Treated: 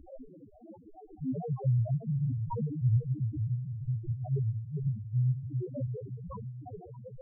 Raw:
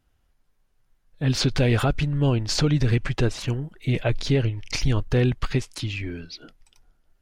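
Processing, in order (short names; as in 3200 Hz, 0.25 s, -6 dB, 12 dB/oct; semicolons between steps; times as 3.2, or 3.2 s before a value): switching spikes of -18.5 dBFS; HPF 120 Hz 24 dB/oct; bell 400 Hz -6 dB 1.9 oct; sample-rate reducer 1900 Hz, jitter 0%; 1.4–2.1 dispersion lows, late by 66 ms, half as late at 440 Hz; chorus voices 2, 0.28 Hz, delay 14 ms, depth 4.9 ms; wow and flutter 16 cents; diffused feedback echo 0.503 s, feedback 49%, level -7.5 dB; loudest bins only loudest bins 1; gain +4.5 dB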